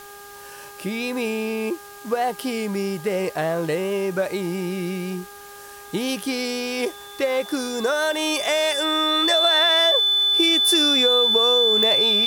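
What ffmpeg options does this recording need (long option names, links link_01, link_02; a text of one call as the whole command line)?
ffmpeg -i in.wav -af "adeclick=threshold=4,bandreject=frequency=405.9:width_type=h:width=4,bandreject=frequency=811.8:width_type=h:width=4,bandreject=frequency=1217.7:width_type=h:width=4,bandreject=frequency=1623.6:width_type=h:width=4,bandreject=frequency=3500:width=30,afwtdn=0.0056" out.wav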